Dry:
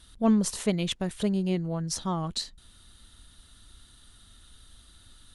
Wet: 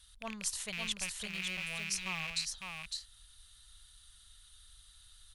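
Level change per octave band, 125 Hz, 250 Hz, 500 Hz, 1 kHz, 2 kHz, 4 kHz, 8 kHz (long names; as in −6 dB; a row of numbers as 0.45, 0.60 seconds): −19.0, −22.0, −19.5, −11.0, +6.5, −2.0, −1.5 decibels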